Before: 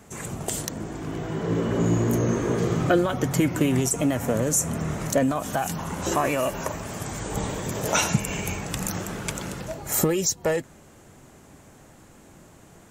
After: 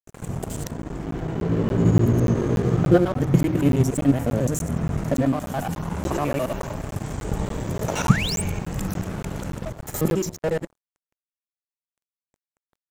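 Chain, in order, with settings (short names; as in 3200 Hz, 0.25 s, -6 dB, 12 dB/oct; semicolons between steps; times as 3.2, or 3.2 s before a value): local time reversal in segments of 71 ms; tilt -2.5 dB/oct; de-hum 52.55 Hz, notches 7; harmonic-percussive split percussive -4 dB; high shelf 12000 Hz +10.5 dB; in parallel at -2.5 dB: level quantiser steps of 16 dB; on the sum: painted sound rise, 8.05–8.42, 850–9400 Hz -25 dBFS; crossover distortion -33 dBFS; crackling interface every 0.29 s, samples 512, zero, from 0.82; gain -1 dB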